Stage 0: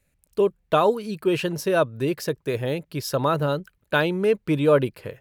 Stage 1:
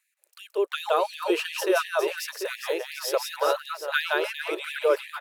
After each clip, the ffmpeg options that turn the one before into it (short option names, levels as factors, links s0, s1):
-filter_complex "[0:a]asplit=2[s0][s1];[s1]aecho=0:1:170|408|741.2|1208|1861:0.631|0.398|0.251|0.158|0.1[s2];[s0][s2]amix=inputs=2:normalize=0,afftfilt=real='re*gte(b*sr/1024,310*pow(1700/310,0.5+0.5*sin(2*PI*2.8*pts/sr)))':imag='im*gte(b*sr/1024,310*pow(1700/310,0.5+0.5*sin(2*PI*2.8*pts/sr)))':win_size=1024:overlap=0.75"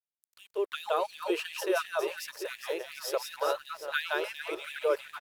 -af "aecho=1:1:1106:0.0841,aeval=exprs='sgn(val(0))*max(abs(val(0))-0.00299,0)':c=same,volume=0.531"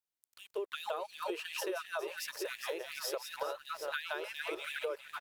-af "acompressor=threshold=0.0178:ratio=12,volume=1.12"